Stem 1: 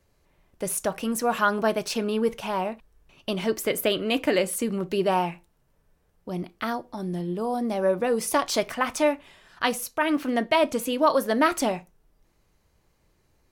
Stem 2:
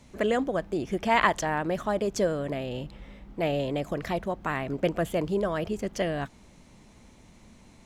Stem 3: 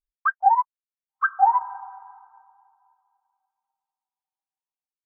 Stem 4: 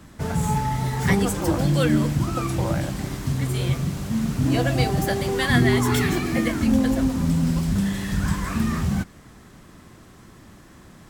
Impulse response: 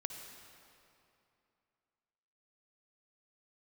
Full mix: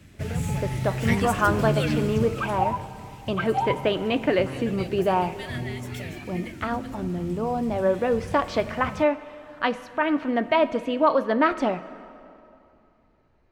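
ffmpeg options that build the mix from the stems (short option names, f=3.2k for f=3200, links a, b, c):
-filter_complex "[0:a]lowpass=2.6k,volume=-2dB,asplit=2[a][b];[b]volume=-6dB[c];[1:a]volume=-15dB[d];[2:a]adelay=2150,volume=-12dB,asplit=2[e][f];[f]volume=-3.5dB[g];[3:a]equalizer=f=100:t=o:w=0.67:g=8,equalizer=f=1k:t=o:w=0.67:g=-10,equalizer=f=2.5k:t=o:w=0.67:g=9,volume=-6.5dB,afade=t=out:st=2:d=0.79:silence=0.316228[h];[4:a]atrim=start_sample=2205[i];[c][g]amix=inputs=2:normalize=0[j];[j][i]afir=irnorm=-1:irlink=0[k];[a][d][e][h][k]amix=inputs=5:normalize=0"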